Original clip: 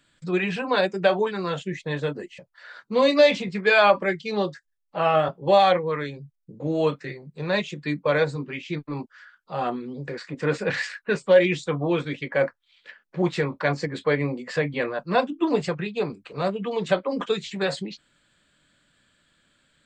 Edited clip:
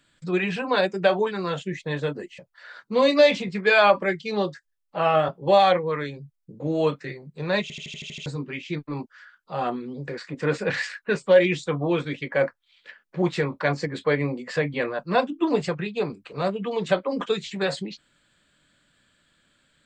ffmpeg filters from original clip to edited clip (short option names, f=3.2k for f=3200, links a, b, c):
-filter_complex "[0:a]asplit=9[a][b][c][d][e][f][g][h][i];[a]atrim=end=7.702[j];[b]atrim=start=7.618:end=7.702[k];[c]atrim=start=7.618:end=7.702[l];[d]atrim=start=7.618:end=7.702[m];[e]atrim=start=7.618:end=7.702[n];[f]atrim=start=7.618:end=7.702[o];[g]atrim=start=7.618:end=7.702[p];[h]atrim=start=7.618:end=7.702[q];[i]atrim=start=8.258[r];[j][k]acrossfade=d=0.004:c1=hsin:c2=hsin[s];[s][l]acrossfade=d=0.004:c1=hsin:c2=hsin[t];[t][m]acrossfade=d=0.004:c1=hsin:c2=hsin[u];[u][n]acrossfade=d=0.004:c1=hsin:c2=hsin[v];[v][o]acrossfade=d=0.004:c1=hsin:c2=hsin[w];[w][p]acrossfade=d=0.004:c1=hsin:c2=hsin[x];[x][q]acrossfade=d=0.004:c1=hsin:c2=hsin[y];[y][r]acrossfade=d=0.004:c1=hsin:c2=hsin"